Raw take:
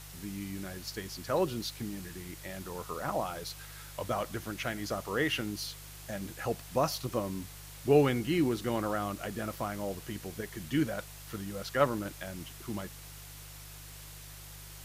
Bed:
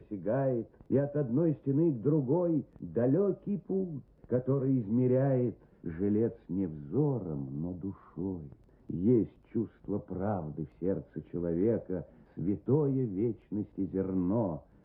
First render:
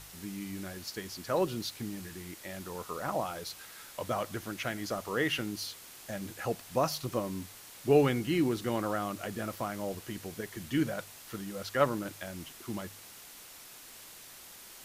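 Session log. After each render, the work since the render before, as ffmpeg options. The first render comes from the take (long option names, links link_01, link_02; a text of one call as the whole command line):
ffmpeg -i in.wav -af "bandreject=frequency=50:width_type=h:width=4,bandreject=frequency=100:width_type=h:width=4,bandreject=frequency=150:width_type=h:width=4" out.wav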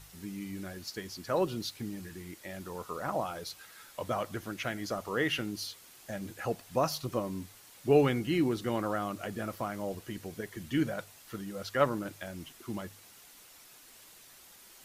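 ffmpeg -i in.wav -af "afftdn=noise_reduction=6:noise_floor=-51" out.wav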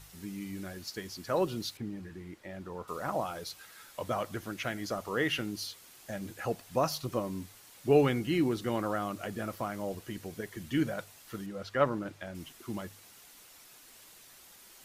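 ffmpeg -i in.wav -filter_complex "[0:a]asettb=1/sr,asplit=3[link_01][link_02][link_03];[link_01]atrim=end=1.774[link_04];[link_02]atrim=start=1.77:end=2.88,asetpts=PTS-STARTPTS,afade=type=in:duration=0.004:curve=qsin,afade=type=out:start_time=1.106:duration=0.004:curve=qsin,lowpass=frequency=1700:poles=1[link_05];[link_03]atrim=start=2.876[link_06];[link_04][link_05]acrossfade=duration=0.004:curve1=hsin:curve2=qsin[link_07];[link_07][link_06]acrossfade=duration=0.004:curve1=qsin:curve2=hsin,asettb=1/sr,asplit=3[link_08][link_09][link_10];[link_08]atrim=end=11.464[link_11];[link_09]atrim=start=11.46:end=12.35,asetpts=PTS-STARTPTS,afade=type=in:duration=0.004:curve=qsin,afade=type=out:start_time=0.886:duration=0.004:curve=qsin,aemphasis=mode=reproduction:type=50kf[link_12];[link_10]atrim=start=12.346[link_13];[link_11][link_12]acrossfade=duration=0.004:curve1=hsin:curve2=qsin[link_14];[link_14][link_13]acrossfade=duration=0.004:curve1=qsin:curve2=hsin" out.wav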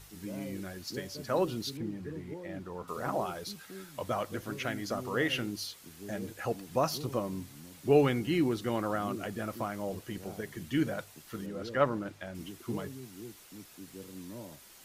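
ffmpeg -i in.wav -i bed.wav -filter_complex "[1:a]volume=-15dB[link_01];[0:a][link_01]amix=inputs=2:normalize=0" out.wav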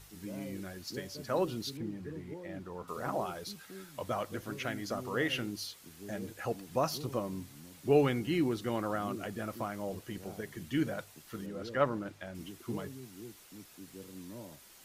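ffmpeg -i in.wav -af "volume=-2dB" out.wav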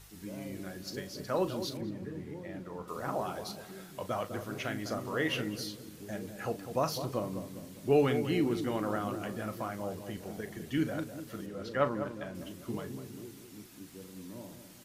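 ffmpeg -i in.wav -filter_complex "[0:a]asplit=2[link_01][link_02];[link_02]adelay=38,volume=-11.5dB[link_03];[link_01][link_03]amix=inputs=2:normalize=0,asplit=2[link_04][link_05];[link_05]adelay=202,lowpass=frequency=890:poles=1,volume=-8dB,asplit=2[link_06][link_07];[link_07]adelay=202,lowpass=frequency=890:poles=1,volume=0.53,asplit=2[link_08][link_09];[link_09]adelay=202,lowpass=frequency=890:poles=1,volume=0.53,asplit=2[link_10][link_11];[link_11]adelay=202,lowpass=frequency=890:poles=1,volume=0.53,asplit=2[link_12][link_13];[link_13]adelay=202,lowpass=frequency=890:poles=1,volume=0.53,asplit=2[link_14][link_15];[link_15]adelay=202,lowpass=frequency=890:poles=1,volume=0.53[link_16];[link_04][link_06][link_08][link_10][link_12][link_14][link_16]amix=inputs=7:normalize=0" out.wav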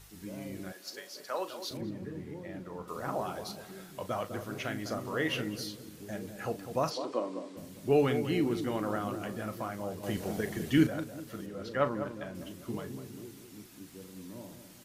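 ffmpeg -i in.wav -filter_complex "[0:a]asettb=1/sr,asplit=3[link_01][link_02][link_03];[link_01]atrim=end=0.724[link_04];[link_02]atrim=start=0.72:end=1.71,asetpts=PTS-STARTPTS,afade=type=in:duration=0.004:curve=qsin,afade=type=out:start_time=0.986:duration=0.004:curve=qsin,highpass=610[link_05];[link_03]atrim=start=1.706[link_06];[link_04][link_05]acrossfade=duration=0.004:curve1=hsin:curve2=qsin[link_07];[link_07][link_06]acrossfade=duration=0.004:curve1=qsin:curve2=hsin,asplit=3[link_08][link_09][link_10];[link_08]afade=type=out:start_time=6.89:duration=0.02[link_11];[link_09]highpass=frequency=260:width=0.5412,highpass=frequency=260:width=1.3066,equalizer=frequency=290:width_type=q:width=4:gain=4,equalizer=frequency=540:width_type=q:width=4:gain=3,equalizer=frequency=1000:width_type=q:width=4:gain=3,equalizer=frequency=6300:width_type=q:width=4:gain=-5,lowpass=frequency=7700:width=0.5412,lowpass=frequency=7700:width=1.3066,afade=type=in:start_time=6.89:duration=0.02,afade=type=out:start_time=7.56:duration=0.02[link_12];[link_10]afade=type=in:start_time=7.56:duration=0.02[link_13];[link_11][link_12][link_13]amix=inputs=3:normalize=0,asettb=1/sr,asplit=3[link_14][link_15][link_16];[link_14]atrim=end=10.034[link_17];[link_15]atrim=start=10.03:end=10.87,asetpts=PTS-STARTPTS,afade=type=in:duration=0.004:curve=qsin,afade=type=out:start_time=0.836:duration=0.004:curve=qsin,acontrast=70[link_18];[link_16]atrim=start=10.866[link_19];[link_17][link_18]acrossfade=duration=0.004:curve1=hsin:curve2=qsin[link_20];[link_20][link_19]acrossfade=duration=0.004:curve1=qsin:curve2=hsin" out.wav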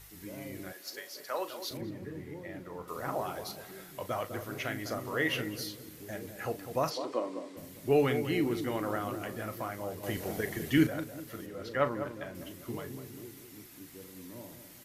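ffmpeg -i in.wav -af "equalizer=frequency=200:width_type=o:width=0.33:gain=-7,equalizer=frequency=2000:width_type=o:width=0.33:gain=5,equalizer=frequency=12500:width_type=o:width=0.33:gain=8" out.wav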